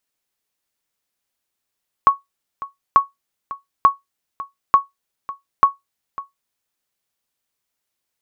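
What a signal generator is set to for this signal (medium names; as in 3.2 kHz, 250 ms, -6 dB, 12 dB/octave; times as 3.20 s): sonar ping 1.11 kHz, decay 0.16 s, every 0.89 s, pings 5, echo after 0.55 s, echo -17.5 dB -2.5 dBFS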